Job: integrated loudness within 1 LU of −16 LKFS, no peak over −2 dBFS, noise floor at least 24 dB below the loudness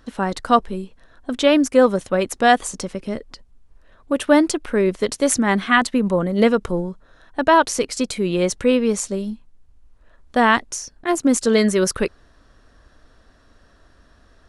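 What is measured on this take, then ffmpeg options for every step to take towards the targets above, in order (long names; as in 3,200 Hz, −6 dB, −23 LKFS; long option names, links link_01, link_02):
integrated loudness −19.0 LKFS; sample peak −1.0 dBFS; target loudness −16.0 LKFS
→ -af "volume=3dB,alimiter=limit=-2dB:level=0:latency=1"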